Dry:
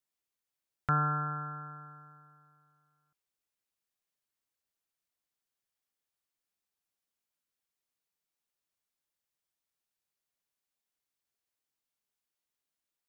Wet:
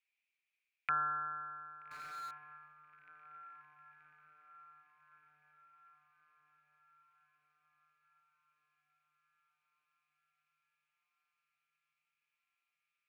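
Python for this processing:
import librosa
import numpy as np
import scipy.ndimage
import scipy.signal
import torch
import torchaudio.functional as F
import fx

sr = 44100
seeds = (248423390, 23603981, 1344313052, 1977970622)

y = fx.bandpass_q(x, sr, hz=2400.0, q=10.0)
y = fx.echo_diffused(y, sr, ms=1260, feedback_pct=55, wet_db=-13)
y = fx.power_curve(y, sr, exponent=0.5, at=(1.91, 2.31))
y = y * 10.0 ** (18.0 / 20.0)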